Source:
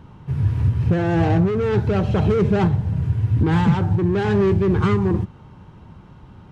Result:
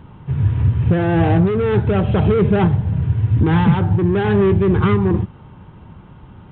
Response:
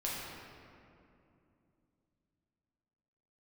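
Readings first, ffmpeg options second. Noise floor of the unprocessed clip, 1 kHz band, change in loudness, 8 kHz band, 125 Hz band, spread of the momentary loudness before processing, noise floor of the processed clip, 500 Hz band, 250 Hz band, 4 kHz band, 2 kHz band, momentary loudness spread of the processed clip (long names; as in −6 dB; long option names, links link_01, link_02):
−45 dBFS, +3.0 dB, +3.0 dB, can't be measured, +3.0 dB, 5 LU, −42 dBFS, +3.0 dB, +3.0 dB, +2.0 dB, +3.0 dB, 5 LU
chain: -af "volume=3dB" -ar 8000 -c:a adpcm_g726 -b:a 40k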